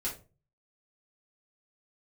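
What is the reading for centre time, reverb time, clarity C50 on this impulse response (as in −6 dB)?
22 ms, 0.35 s, 9.0 dB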